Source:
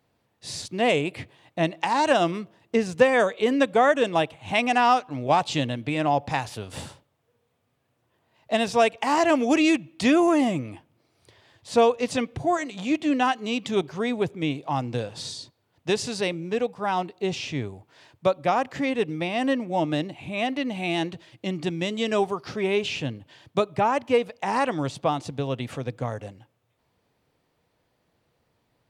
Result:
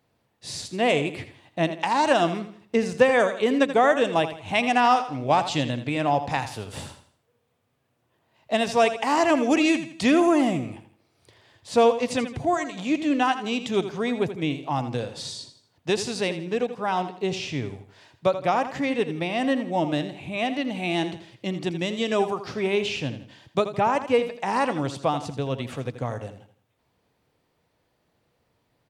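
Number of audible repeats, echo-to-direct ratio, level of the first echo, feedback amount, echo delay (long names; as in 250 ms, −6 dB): 3, −11.0 dB, −11.5 dB, 37%, 82 ms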